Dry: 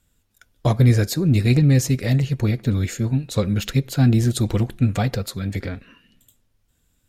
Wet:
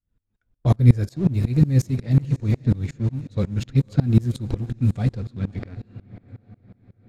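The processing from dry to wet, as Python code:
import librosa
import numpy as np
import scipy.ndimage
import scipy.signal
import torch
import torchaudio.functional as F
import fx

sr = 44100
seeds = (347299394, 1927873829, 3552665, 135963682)

p1 = fx.notch(x, sr, hz=2900.0, q=25.0)
p2 = np.where(np.abs(p1) >= 10.0 ** (-24.0 / 20.0), p1, 0.0)
p3 = p1 + (p2 * librosa.db_to_amplitude(-4.0))
p4 = fx.low_shelf(p3, sr, hz=360.0, db=10.5)
p5 = p4 + fx.echo_diffused(p4, sr, ms=587, feedback_pct=42, wet_db=-15.5, dry=0)
p6 = fx.env_lowpass(p5, sr, base_hz=2300.0, full_db=-0.5)
p7 = fx.tremolo_decay(p6, sr, direction='swelling', hz=5.5, depth_db=25)
y = p7 * librosa.db_to_amplitude(-7.0)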